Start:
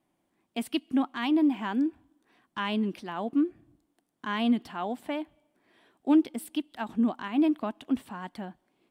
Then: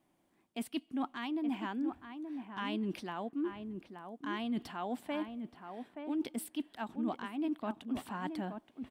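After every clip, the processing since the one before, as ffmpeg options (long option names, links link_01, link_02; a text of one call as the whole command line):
ffmpeg -i in.wav -filter_complex "[0:a]areverse,acompressor=threshold=-35dB:ratio=6,areverse,asplit=2[link_01][link_02];[link_02]adelay=874.6,volume=-7dB,highshelf=frequency=4000:gain=-19.7[link_03];[link_01][link_03]amix=inputs=2:normalize=0,volume=1dB" out.wav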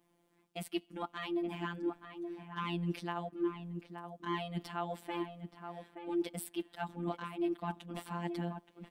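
ffmpeg -i in.wav -af "afftfilt=real='hypot(re,im)*cos(PI*b)':imag='0':win_size=1024:overlap=0.75,volume=4dB" out.wav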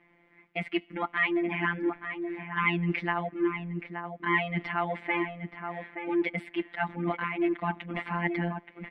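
ffmpeg -i in.wav -filter_complex "[0:a]asplit=2[link_01][link_02];[link_02]asoftclip=type=tanh:threshold=-36dB,volume=-9dB[link_03];[link_01][link_03]amix=inputs=2:normalize=0,lowpass=frequency=2100:width_type=q:width=7.4,volume=5dB" out.wav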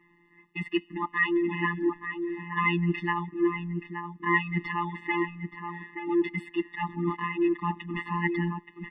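ffmpeg -i in.wav -af "afftfilt=real='re*eq(mod(floor(b*sr/1024/420),2),0)':imag='im*eq(mod(floor(b*sr/1024/420),2),0)':win_size=1024:overlap=0.75,volume=2.5dB" out.wav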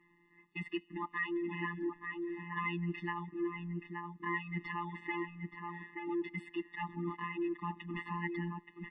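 ffmpeg -i in.wav -af "acompressor=threshold=-31dB:ratio=2,volume=-6dB" -ar 24000 -c:a aac -b:a 96k out.aac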